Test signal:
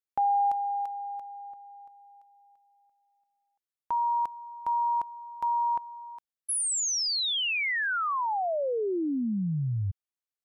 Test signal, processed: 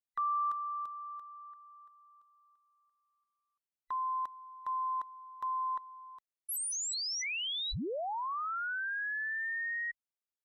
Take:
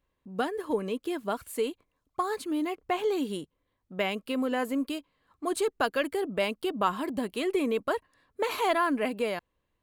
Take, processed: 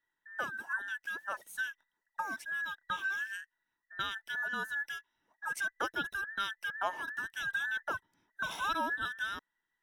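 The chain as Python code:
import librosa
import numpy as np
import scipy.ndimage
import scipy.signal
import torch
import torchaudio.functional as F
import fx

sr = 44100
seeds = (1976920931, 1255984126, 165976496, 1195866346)

y = fx.band_invert(x, sr, width_hz=2000)
y = y * 10.0 ** (-7.5 / 20.0)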